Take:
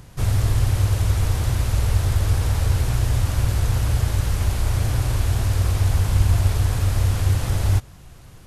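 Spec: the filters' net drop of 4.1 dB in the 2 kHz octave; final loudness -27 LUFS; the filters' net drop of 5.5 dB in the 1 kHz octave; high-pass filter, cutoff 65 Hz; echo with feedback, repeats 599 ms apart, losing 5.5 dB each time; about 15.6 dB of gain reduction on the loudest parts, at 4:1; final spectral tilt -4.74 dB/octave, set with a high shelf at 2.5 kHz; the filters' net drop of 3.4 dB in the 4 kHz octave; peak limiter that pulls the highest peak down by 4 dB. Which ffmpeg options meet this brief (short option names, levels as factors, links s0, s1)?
-af "highpass=65,equalizer=f=1000:t=o:g=-7,equalizer=f=2000:t=o:g=-3,highshelf=f=2500:g=4,equalizer=f=4000:t=o:g=-7,acompressor=threshold=0.0178:ratio=4,alimiter=level_in=1.68:limit=0.0631:level=0:latency=1,volume=0.596,aecho=1:1:599|1198|1797|2396|2995|3594|4193:0.531|0.281|0.149|0.079|0.0419|0.0222|0.0118,volume=2.99"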